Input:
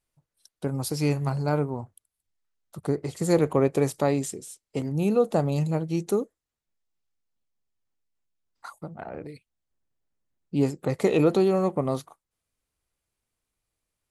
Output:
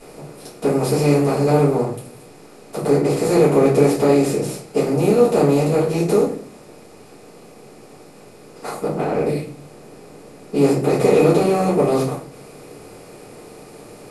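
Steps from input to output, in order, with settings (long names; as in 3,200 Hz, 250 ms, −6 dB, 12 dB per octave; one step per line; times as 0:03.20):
compressor on every frequency bin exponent 0.4
rectangular room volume 36 cubic metres, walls mixed, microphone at 1.6 metres
level −8 dB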